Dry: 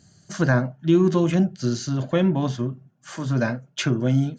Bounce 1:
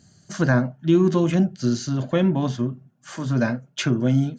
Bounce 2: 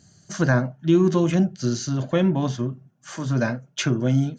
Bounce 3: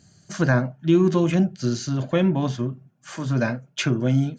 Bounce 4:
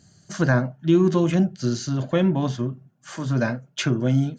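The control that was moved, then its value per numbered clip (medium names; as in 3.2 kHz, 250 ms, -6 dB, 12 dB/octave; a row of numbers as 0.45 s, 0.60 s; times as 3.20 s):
peaking EQ, frequency: 240 Hz, 6 kHz, 2.4 kHz, 15 kHz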